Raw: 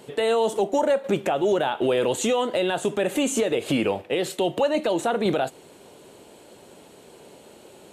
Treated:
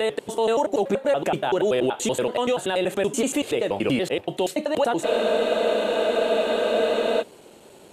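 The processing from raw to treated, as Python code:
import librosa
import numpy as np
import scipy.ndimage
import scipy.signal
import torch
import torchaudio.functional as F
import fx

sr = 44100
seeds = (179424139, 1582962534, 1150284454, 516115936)

y = fx.block_reorder(x, sr, ms=95.0, group=3)
y = fx.wow_flutter(y, sr, seeds[0], rate_hz=2.1, depth_cents=21.0)
y = fx.spec_freeze(y, sr, seeds[1], at_s=5.07, hold_s=2.15)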